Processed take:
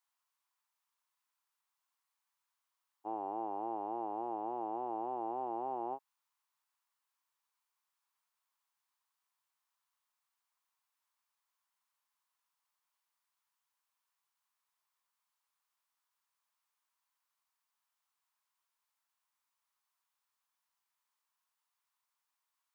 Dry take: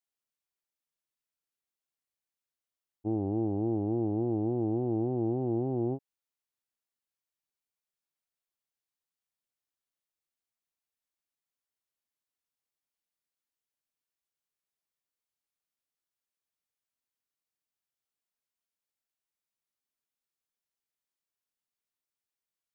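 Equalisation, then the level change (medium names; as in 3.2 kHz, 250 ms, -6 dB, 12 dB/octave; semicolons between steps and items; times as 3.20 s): resonant high-pass 1 kHz, resonance Q 4.1; +3.5 dB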